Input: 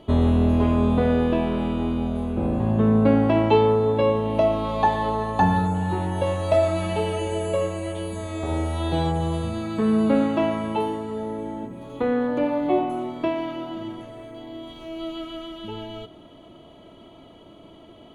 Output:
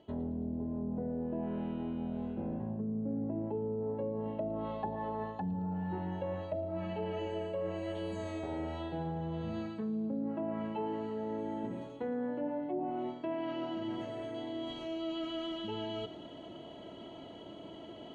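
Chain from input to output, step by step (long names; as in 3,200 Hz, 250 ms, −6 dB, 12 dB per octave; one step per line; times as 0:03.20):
low-pass filter 8,000 Hz 24 dB per octave
hum removal 83.8 Hz, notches 3
treble cut that deepens with the level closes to 440 Hz, closed at −15 dBFS
dynamic equaliser 180 Hz, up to +6 dB, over −35 dBFS, Q 2.1
reversed playback
downward compressor 6 to 1, threshold −34 dBFS, peak gain reduction 19.5 dB
reversed playback
notch comb filter 1,200 Hz
on a send: delay with a high-pass on its return 111 ms, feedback 64%, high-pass 3,100 Hz, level −11.5 dB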